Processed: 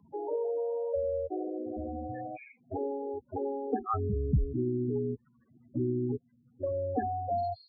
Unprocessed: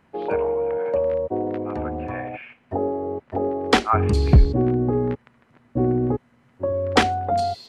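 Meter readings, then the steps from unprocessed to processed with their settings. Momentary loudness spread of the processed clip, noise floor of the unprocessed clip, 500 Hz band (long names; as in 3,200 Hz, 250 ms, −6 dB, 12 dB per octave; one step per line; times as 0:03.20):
9 LU, −60 dBFS, −9.5 dB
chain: spectral peaks only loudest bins 8
multiband upward and downward compressor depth 40%
level −9 dB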